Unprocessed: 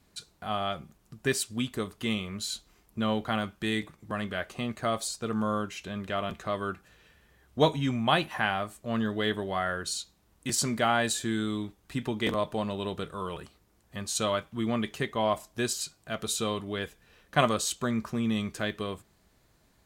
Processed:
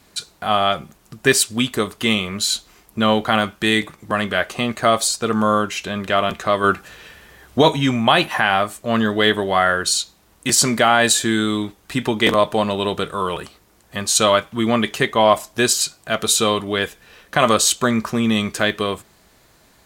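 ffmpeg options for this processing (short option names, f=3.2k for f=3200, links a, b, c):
-filter_complex "[0:a]asplit=3[a][b][c];[a]atrim=end=6.642[d];[b]atrim=start=6.638:end=7.632,asetpts=PTS-STARTPTS,volume=4.5dB[e];[c]atrim=start=7.628[f];[d][e]acrossfade=d=0.004:c1=hsin:c2=hsin[g];[g][f]acrossfade=d=0.004:c1=hsin:c2=hsin,lowshelf=f=260:g=-8,alimiter=level_in=15.5dB:limit=-1dB:release=50:level=0:latency=1,volume=-1dB"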